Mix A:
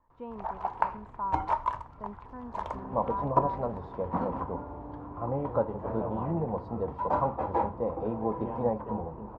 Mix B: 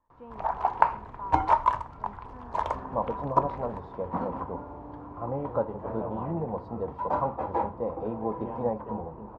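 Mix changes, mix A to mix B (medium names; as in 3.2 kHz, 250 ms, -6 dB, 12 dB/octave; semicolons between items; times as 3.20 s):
speech -5.0 dB; first sound +6.5 dB; master: add bass shelf 150 Hz -3 dB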